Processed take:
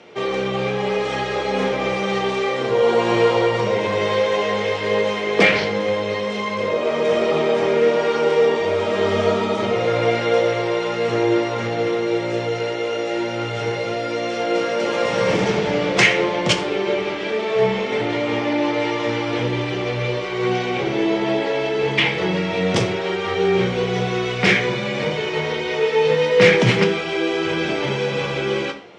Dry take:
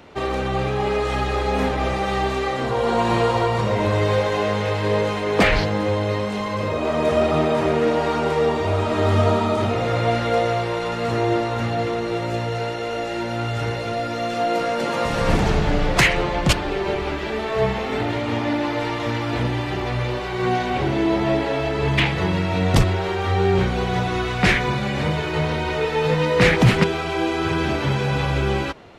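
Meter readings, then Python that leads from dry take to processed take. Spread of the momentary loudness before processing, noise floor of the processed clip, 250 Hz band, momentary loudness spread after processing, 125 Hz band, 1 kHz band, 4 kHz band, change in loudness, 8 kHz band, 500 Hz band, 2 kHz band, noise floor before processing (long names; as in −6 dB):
7 LU, −25 dBFS, 0.0 dB, 7 LU, −5.5 dB, −1.5 dB, +3.0 dB, +1.5 dB, +0.5 dB, +3.5 dB, +2.5 dB, −26 dBFS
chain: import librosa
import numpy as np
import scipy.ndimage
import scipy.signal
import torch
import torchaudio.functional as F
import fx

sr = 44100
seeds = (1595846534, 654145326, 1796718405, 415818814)

y = fx.cabinet(x, sr, low_hz=180.0, low_slope=12, high_hz=8400.0, hz=(200.0, 470.0, 2200.0, 3200.0, 5600.0), db=(5, 10, 6, 6, 6))
y = fx.rev_fdn(y, sr, rt60_s=0.52, lf_ratio=1.0, hf_ratio=0.8, size_ms=50.0, drr_db=3.5)
y = F.gain(torch.from_numpy(y), -3.0).numpy()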